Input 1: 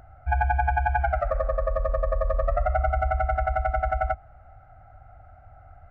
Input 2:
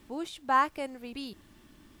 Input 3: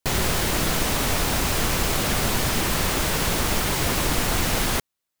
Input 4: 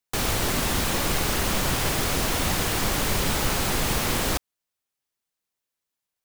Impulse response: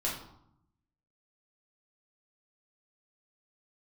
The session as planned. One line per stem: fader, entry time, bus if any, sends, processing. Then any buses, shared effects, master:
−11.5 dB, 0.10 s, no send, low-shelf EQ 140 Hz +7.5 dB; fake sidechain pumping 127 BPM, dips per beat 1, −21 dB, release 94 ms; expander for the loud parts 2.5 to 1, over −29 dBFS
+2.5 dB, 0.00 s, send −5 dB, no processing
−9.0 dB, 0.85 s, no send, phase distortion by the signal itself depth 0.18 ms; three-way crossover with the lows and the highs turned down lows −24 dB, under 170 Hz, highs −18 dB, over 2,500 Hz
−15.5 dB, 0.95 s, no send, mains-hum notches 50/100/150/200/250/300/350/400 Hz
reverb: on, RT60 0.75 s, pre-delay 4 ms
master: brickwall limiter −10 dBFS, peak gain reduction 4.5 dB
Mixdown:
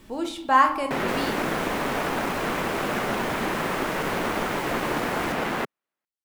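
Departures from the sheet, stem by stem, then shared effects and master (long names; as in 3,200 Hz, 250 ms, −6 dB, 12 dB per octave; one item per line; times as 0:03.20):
stem 1: muted
stem 3 −9.0 dB → +2.0 dB
master: missing brickwall limiter −10 dBFS, peak gain reduction 4.5 dB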